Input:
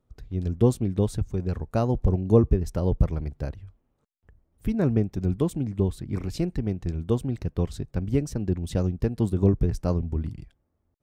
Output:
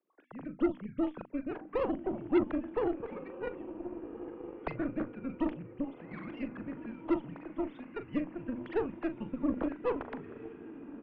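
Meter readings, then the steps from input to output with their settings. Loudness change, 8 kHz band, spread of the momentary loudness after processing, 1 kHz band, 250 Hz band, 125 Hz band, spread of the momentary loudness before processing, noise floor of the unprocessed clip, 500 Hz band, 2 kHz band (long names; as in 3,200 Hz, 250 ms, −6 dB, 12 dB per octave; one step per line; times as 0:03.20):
−10.0 dB, below −35 dB, 11 LU, −2.5 dB, −7.0 dB, −25.0 dB, 9 LU, −74 dBFS, −7.5 dB, +1.0 dB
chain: three sine waves on the formant tracks
mains-hum notches 60/120/180/240/300/360/420 Hz
downward compressor 2 to 1, threshold −26 dBFS, peak gain reduction 10 dB
rotating-speaker cabinet horn 6.3 Hz, later 1.1 Hz, at 0:04.10
single-sideband voice off tune −110 Hz 430–3,000 Hz
double-tracking delay 40 ms −9.5 dB
feedback delay with all-pass diffusion 1,562 ms, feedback 41%, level −11 dB
harmonic generator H 8 −20 dB, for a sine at −16.5 dBFS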